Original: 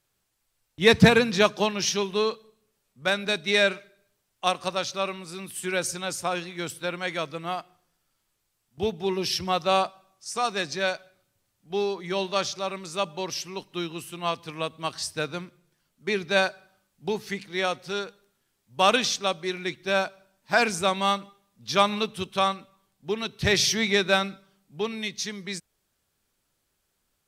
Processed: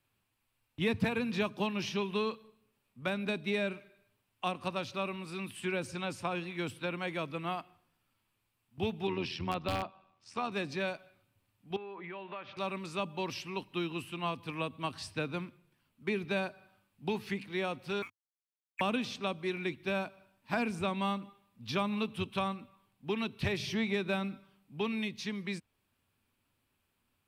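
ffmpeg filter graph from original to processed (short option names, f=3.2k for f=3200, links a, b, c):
-filter_complex "[0:a]asettb=1/sr,asplit=3[a][b][c];[a]atrim=end=9.074[d];[b]atrim=start=9.07:end=10.52,asetpts=PTS-STARTPTS,afade=t=in:d=0.004:c=qsin,afade=t=out:st=1.446:d=0.004:c=qsin,lowpass=4.7k,tremolo=f=83:d=0.519,aeval=exprs='(mod(4.73*val(0)+1,2)-1)/4.73':c=same[e];[c]atrim=start=10.516[f];[d][e]acrossfade=d=0.004:c1=hsin:c2=qsin[g];[g][f]acrossfade=d=0.004:c1=qsin:c2=hsin,asettb=1/sr,asplit=3[h][i][j];[h]atrim=end=11.764[k];[i]atrim=start=11.76:end=12.57,asetpts=PTS-STARTPTS,afade=t=in:d=0.004:c=qsin,afade=t=out:st=0.806:d=0.004:c=qsin,lowpass=f=2.3k:w=0.5412,lowpass=f=2.3k:w=1.3066,acompressor=threshold=-35dB:ratio=8:attack=3.2:release=140:knee=1:detection=peak,aemphasis=mode=production:type=bsi[l];[j]atrim=start=12.566[m];[k][l]acrossfade=d=0.004:c1=hsin:c2=qsin[n];[n][m]acrossfade=d=0.004:c1=qsin:c2=hsin,asettb=1/sr,asplit=3[o][p][q];[o]atrim=end=18.024[r];[p]atrim=start=18.02:end=18.81,asetpts=PTS-STARTPTS,afade=t=in:d=0.004:c=qsin,afade=t=out:st=0.786:d=0.004:c=qsin,lowpass=f=2.3k:t=q:w=0.5098,lowpass=f=2.3k:t=q:w=0.6013,lowpass=f=2.3k:t=q:w=0.9,lowpass=f=2.3k:t=q:w=2.563,afreqshift=-2700,aeval=exprs='sgn(val(0))*max(abs(val(0))-0.00596,0)':c=same[s];[q]atrim=start=18.806[t];[r][s]acrossfade=d=0.004:c1=hsin:c2=qsin[u];[u][t]acrossfade=d=0.004:c1=qsin:c2=hsin,equalizer=f=100:t=o:w=0.67:g=11,equalizer=f=250:t=o:w=0.67:g=9,equalizer=f=1k:t=o:w=0.67:g=6,equalizer=f=2.5k:t=o:w=0.67:g=9,equalizer=f=6.3k:t=o:w=0.67:g=-8,acrossover=split=390|880|7600[v][w][x][y];[v]acompressor=threshold=-27dB:ratio=4[z];[w]acompressor=threshold=-33dB:ratio=4[aa];[x]acompressor=threshold=-32dB:ratio=4[ab];[y]acompressor=threshold=-55dB:ratio=4[ac];[z][aa][ab][ac]amix=inputs=4:normalize=0,equalizer=f=2.1k:w=7.5:g=-2.5,volume=-6dB"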